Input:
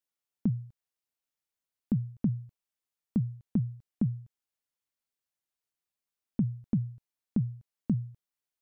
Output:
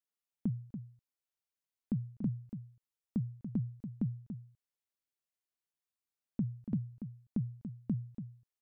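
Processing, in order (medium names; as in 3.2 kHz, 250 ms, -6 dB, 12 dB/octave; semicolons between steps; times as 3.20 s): delay 286 ms -9.5 dB; trim -6 dB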